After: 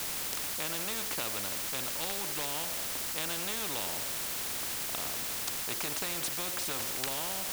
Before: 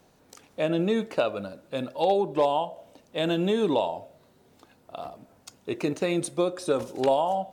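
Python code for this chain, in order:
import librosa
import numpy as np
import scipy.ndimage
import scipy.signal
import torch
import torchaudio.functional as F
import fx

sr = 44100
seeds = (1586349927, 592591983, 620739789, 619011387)

p1 = fx.quant_dither(x, sr, seeds[0], bits=6, dither='triangular')
p2 = x + (p1 * 10.0 ** (-8.0 / 20.0))
p3 = fx.spectral_comp(p2, sr, ratio=4.0)
y = p3 * 10.0 ** (-6.5 / 20.0)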